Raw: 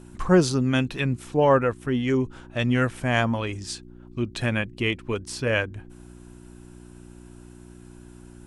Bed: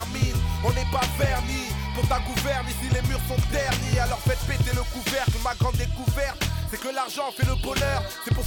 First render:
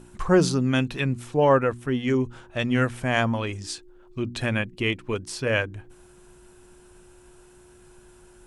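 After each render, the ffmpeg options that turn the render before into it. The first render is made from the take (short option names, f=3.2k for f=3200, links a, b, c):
-af "bandreject=f=60:t=h:w=4,bandreject=f=120:t=h:w=4,bandreject=f=180:t=h:w=4,bandreject=f=240:t=h:w=4,bandreject=f=300:t=h:w=4"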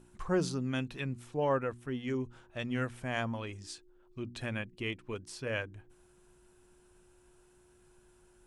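-af "volume=-11.5dB"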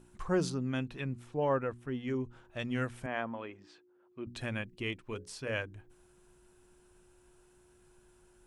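-filter_complex "[0:a]asettb=1/sr,asplit=3[a][b][c];[a]atrim=end=0.504[d];[b]atrim=start=0.5:end=2.45,asetpts=PTS-STARTPTS,afade=t=in:d=0.004:c=qsin,afade=t=out:st=1.946:d=0.004:c=qsin,highshelf=f=3.6k:g=-7.5[e];[c]atrim=start=2.446[f];[d][e]acrossfade=d=0.004:c1=hsin:c2=qsin[g];[g][f]acrossfade=d=0.004:c1=qsin:c2=hsin,asettb=1/sr,asplit=3[h][i][j];[h]atrim=end=3.064[k];[i]atrim=start=3.06:end=4.27,asetpts=PTS-STARTPTS,afade=t=in:d=0.004:c=qsin,afade=t=out:st=1.206:d=0.004:c=qsin,highpass=240,lowpass=2.1k[l];[j]atrim=start=4.266[m];[k][l]acrossfade=d=0.004:c1=hsin:c2=qsin[n];[n][m]acrossfade=d=0.004:c1=qsin:c2=hsin,asettb=1/sr,asplit=3[o][p][q];[o]atrim=end=4.994[r];[p]atrim=start=4.99:end=5.52,asetpts=PTS-STARTPTS,afade=t=in:d=0.004:c=qsin,afade=t=out:st=0.526:d=0.004:c=qsin,bandreject=f=60:t=h:w=6,bandreject=f=120:t=h:w=6,bandreject=f=180:t=h:w=6,bandreject=f=240:t=h:w=6,bandreject=f=300:t=h:w=6,bandreject=f=360:t=h:w=6,bandreject=f=420:t=h:w=6,bandreject=f=480:t=h:w=6,bandreject=f=540:t=h:w=6[s];[q]atrim=start=5.516[t];[r][s]acrossfade=d=0.004:c1=hsin:c2=qsin[u];[u][t]acrossfade=d=0.004:c1=qsin:c2=hsin"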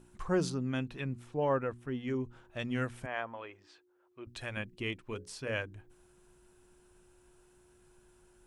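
-filter_complex "[0:a]asettb=1/sr,asplit=3[a][b][c];[a]atrim=end=3.054[d];[b]atrim=start=3.05:end=4.57,asetpts=PTS-STARTPTS,afade=t=in:d=0.004:c=qsin,afade=t=out:st=1.516:d=0.004:c=qsin,equalizer=f=200:w=1.1:g=-13[e];[c]atrim=start=4.566[f];[d][e]acrossfade=d=0.004:c1=hsin:c2=qsin[g];[g][f]acrossfade=d=0.004:c1=qsin:c2=hsin"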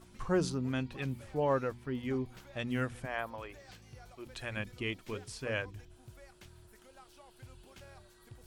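-filter_complex "[1:a]volume=-30dB[a];[0:a][a]amix=inputs=2:normalize=0"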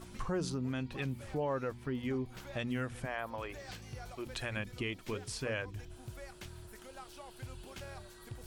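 -filter_complex "[0:a]asplit=2[a][b];[b]alimiter=level_in=3dB:limit=-24dB:level=0:latency=1,volume=-3dB,volume=2dB[c];[a][c]amix=inputs=2:normalize=0,acompressor=threshold=-39dB:ratio=2"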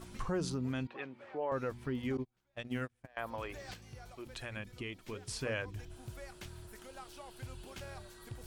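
-filter_complex "[0:a]asettb=1/sr,asplit=3[a][b][c];[a]atrim=end=0.874[d];[b]atrim=start=0.87:end=1.52,asetpts=PTS-STARTPTS,afade=t=in:d=0.004:c=qsin,afade=t=out:st=0.646:d=0.004:c=qsin,highpass=410,lowpass=2.2k[e];[c]atrim=start=1.516[f];[d][e]acrossfade=d=0.004:c1=hsin:c2=qsin[g];[g][f]acrossfade=d=0.004:c1=qsin:c2=hsin,asettb=1/sr,asplit=3[h][i][j];[h]atrim=end=2.174[k];[i]atrim=start=2.17:end=3.17,asetpts=PTS-STARTPTS,afade=t=in:d=0.004:c=qsin,afade=t=out:st=0.996:d=0.004:c=qsin,agate=range=-33dB:threshold=-36dB:ratio=16:release=100:detection=peak[l];[j]atrim=start=3.166[m];[k][l]acrossfade=d=0.004:c1=hsin:c2=qsin[n];[n][m]acrossfade=d=0.004:c1=qsin:c2=hsin,asplit=3[o][p][q];[o]atrim=end=3.742[r];[p]atrim=start=3.738:end=5.282,asetpts=PTS-STARTPTS,volume=-5dB[s];[q]atrim=start=5.278[t];[r][s]acrossfade=d=0.004:c1=hsin:c2=hsin[u];[u][t]acrossfade=d=0.004:c1=hsin:c2=hsin"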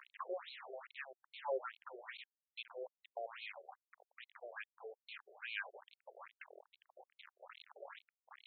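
-af "acrusher=bits=6:mix=0:aa=0.000001,afftfilt=real='re*between(b*sr/1024,500*pow(3100/500,0.5+0.5*sin(2*PI*2.4*pts/sr))/1.41,500*pow(3100/500,0.5+0.5*sin(2*PI*2.4*pts/sr))*1.41)':imag='im*between(b*sr/1024,500*pow(3100/500,0.5+0.5*sin(2*PI*2.4*pts/sr))/1.41,500*pow(3100/500,0.5+0.5*sin(2*PI*2.4*pts/sr))*1.41)':win_size=1024:overlap=0.75"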